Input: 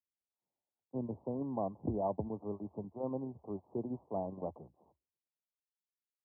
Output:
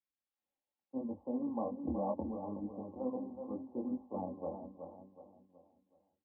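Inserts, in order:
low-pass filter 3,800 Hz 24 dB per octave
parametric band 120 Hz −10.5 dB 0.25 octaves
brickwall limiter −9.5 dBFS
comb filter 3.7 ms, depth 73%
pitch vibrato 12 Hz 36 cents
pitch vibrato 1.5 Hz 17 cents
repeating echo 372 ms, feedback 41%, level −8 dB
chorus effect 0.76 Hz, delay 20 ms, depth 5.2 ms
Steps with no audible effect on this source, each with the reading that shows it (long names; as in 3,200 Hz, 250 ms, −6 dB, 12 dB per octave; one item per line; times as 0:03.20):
low-pass filter 3,800 Hz: nothing at its input above 1,100 Hz
brickwall limiter −9.5 dBFS: peak of its input −22.5 dBFS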